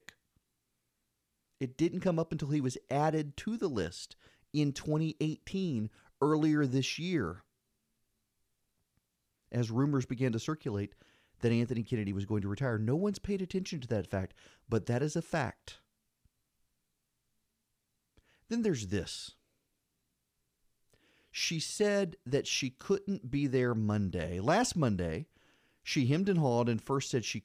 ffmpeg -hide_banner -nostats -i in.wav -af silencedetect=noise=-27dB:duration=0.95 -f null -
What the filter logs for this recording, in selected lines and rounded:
silence_start: 0.00
silence_end: 1.63 | silence_duration: 1.63
silence_start: 7.27
silence_end: 9.55 | silence_duration: 2.27
silence_start: 15.50
silence_end: 18.52 | silence_duration: 3.02
silence_start: 19.00
silence_end: 21.38 | silence_duration: 2.38